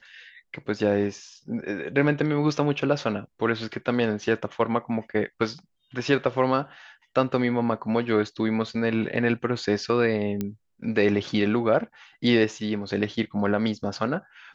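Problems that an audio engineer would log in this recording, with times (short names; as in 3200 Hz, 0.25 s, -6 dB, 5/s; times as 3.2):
10.41 pop -15 dBFS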